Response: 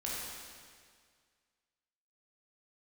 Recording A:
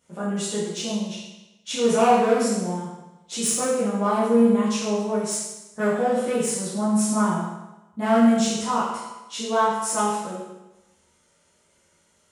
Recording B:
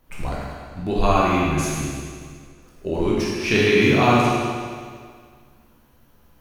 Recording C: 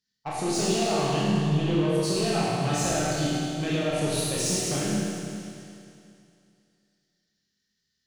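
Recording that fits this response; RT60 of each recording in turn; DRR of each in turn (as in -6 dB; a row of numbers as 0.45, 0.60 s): B; 1.0, 1.9, 2.5 s; -10.5, -6.0, -8.0 dB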